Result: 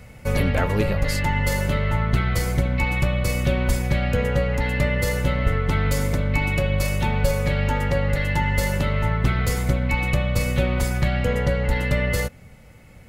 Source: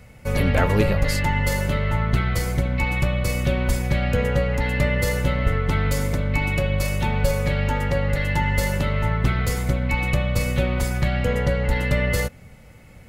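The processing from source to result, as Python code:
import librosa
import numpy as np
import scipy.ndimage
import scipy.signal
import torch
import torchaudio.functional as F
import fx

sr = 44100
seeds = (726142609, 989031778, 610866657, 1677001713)

y = fx.rider(x, sr, range_db=10, speed_s=0.5)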